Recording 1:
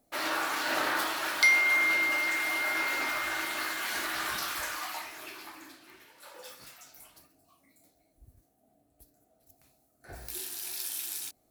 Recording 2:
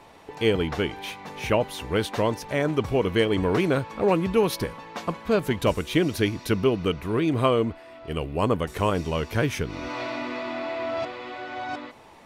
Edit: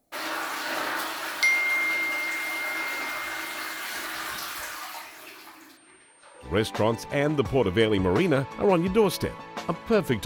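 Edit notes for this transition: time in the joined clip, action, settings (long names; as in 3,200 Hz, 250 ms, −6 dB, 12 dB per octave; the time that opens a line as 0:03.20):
recording 1
0:05.77–0:06.52: switching amplifier with a slow clock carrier 8,700 Hz
0:06.46: continue with recording 2 from 0:01.85, crossfade 0.12 s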